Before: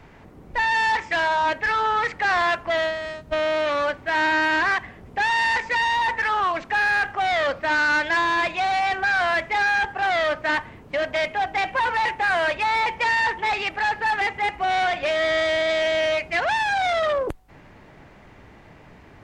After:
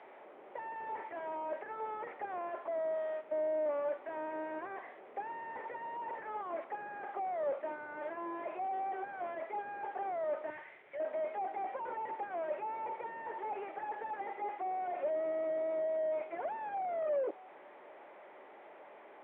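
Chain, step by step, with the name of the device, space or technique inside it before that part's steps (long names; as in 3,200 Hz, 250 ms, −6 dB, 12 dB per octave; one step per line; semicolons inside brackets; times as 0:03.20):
digital answering machine (band-pass filter 310–3,200 Hz; linear delta modulator 16 kbit/s, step −42.5 dBFS; loudspeaker in its box 380–3,500 Hz, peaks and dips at 380 Hz +6 dB, 580 Hz +8 dB, 820 Hz +5 dB, 1,600 Hz −3 dB, 2,800 Hz −8 dB)
0:10.50–0:11.00: graphic EQ with 10 bands 125 Hz +8 dB, 250 Hz −12 dB, 500 Hz −6 dB, 1,000 Hz −9 dB, 2,000 Hz +7 dB
level −8 dB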